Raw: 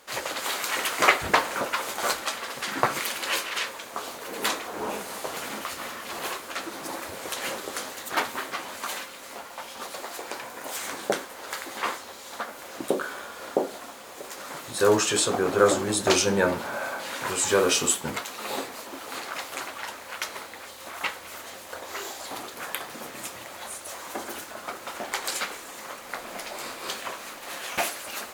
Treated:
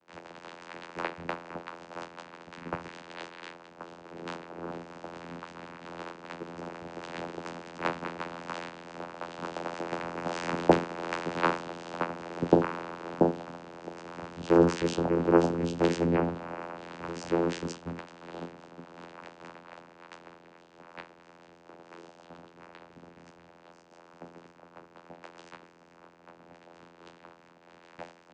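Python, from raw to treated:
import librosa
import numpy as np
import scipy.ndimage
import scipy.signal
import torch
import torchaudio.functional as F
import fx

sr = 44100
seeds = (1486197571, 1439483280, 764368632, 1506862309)

y = fx.doppler_pass(x, sr, speed_mps=14, closest_m=20.0, pass_at_s=10.97)
y = fx.vocoder(y, sr, bands=8, carrier='saw', carrier_hz=85.1)
y = fx.high_shelf(y, sr, hz=6200.0, db=-8.5)
y = F.gain(torch.from_numpy(y), 7.0).numpy()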